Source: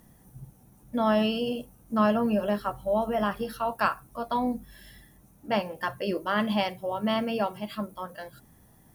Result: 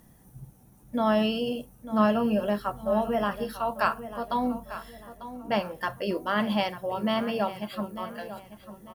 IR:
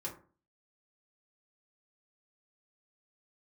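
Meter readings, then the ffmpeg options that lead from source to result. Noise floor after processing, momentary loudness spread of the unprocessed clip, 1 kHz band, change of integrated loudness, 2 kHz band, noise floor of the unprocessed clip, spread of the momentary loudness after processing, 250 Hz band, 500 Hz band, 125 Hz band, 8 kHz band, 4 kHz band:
−56 dBFS, 12 LU, 0.0 dB, 0.0 dB, 0.0 dB, −58 dBFS, 16 LU, +0.5 dB, +0.5 dB, +0.5 dB, 0.0 dB, 0.0 dB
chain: -filter_complex "[0:a]asplit=2[link_01][link_02];[link_02]adelay=896,lowpass=frequency=3600:poles=1,volume=-13dB,asplit=2[link_03][link_04];[link_04]adelay=896,lowpass=frequency=3600:poles=1,volume=0.35,asplit=2[link_05][link_06];[link_06]adelay=896,lowpass=frequency=3600:poles=1,volume=0.35[link_07];[link_01][link_03][link_05][link_07]amix=inputs=4:normalize=0"

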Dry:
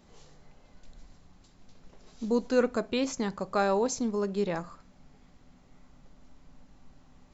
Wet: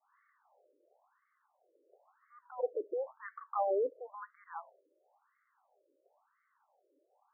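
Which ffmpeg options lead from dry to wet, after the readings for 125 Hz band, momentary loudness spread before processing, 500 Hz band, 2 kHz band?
below −40 dB, 8 LU, −7.5 dB, −14.5 dB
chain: -af "agate=range=-33dB:threshold=-56dB:ratio=3:detection=peak,afftfilt=real='re*between(b*sr/1024,420*pow(1600/420,0.5+0.5*sin(2*PI*0.97*pts/sr))/1.41,420*pow(1600/420,0.5+0.5*sin(2*PI*0.97*pts/sr))*1.41)':imag='im*between(b*sr/1024,420*pow(1600/420,0.5+0.5*sin(2*PI*0.97*pts/sr))/1.41,420*pow(1600/420,0.5+0.5*sin(2*PI*0.97*pts/sr))*1.41)':win_size=1024:overlap=0.75,volume=-3dB"

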